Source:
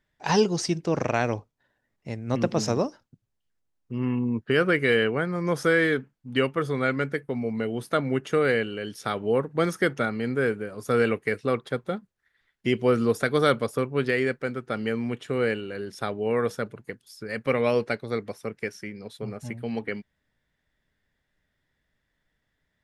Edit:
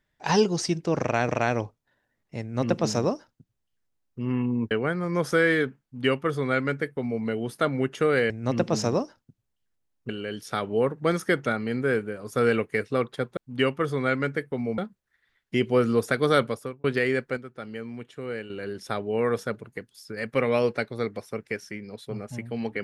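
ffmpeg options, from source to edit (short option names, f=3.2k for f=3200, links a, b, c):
-filter_complex "[0:a]asplit=10[a][b][c][d][e][f][g][h][i][j];[a]atrim=end=1.292[k];[b]atrim=start=1.018:end=4.442[l];[c]atrim=start=5.028:end=8.622[m];[d]atrim=start=2.138:end=3.932[n];[e]atrim=start=8.618:end=11.902[o];[f]atrim=start=6.138:end=7.552[p];[g]atrim=start=11.898:end=13.96,asetpts=PTS-STARTPTS,afade=t=out:st=1.642:d=0.42[q];[h]atrim=start=13.96:end=14.492,asetpts=PTS-STARTPTS,afade=t=in:d=0.004:c=hsin[r];[i]atrim=start=14.488:end=15.622,asetpts=PTS-STARTPTS,volume=-8.5dB[s];[j]atrim=start=15.618[t];[k][l]acrossfade=d=0.004:c1=hsin:c2=hsin[u];[u][m]acrossfade=d=0.004:c1=hsin:c2=hsin[v];[v][n]acrossfade=d=0.004:c1=hsin:c2=hsin[w];[w][o]acrossfade=d=0.004:c1=hsin:c2=hsin[x];[x][p]acrossfade=d=0.004:c1=hsin:c2=hsin[y];[q][r]concat=n=2:v=0:a=1[z];[y][z]acrossfade=d=0.004:c1=hsin:c2=hsin[aa];[aa][s]acrossfade=d=0.004:c1=hsin:c2=hsin[ab];[ab][t]acrossfade=d=0.004:c1=hsin:c2=hsin"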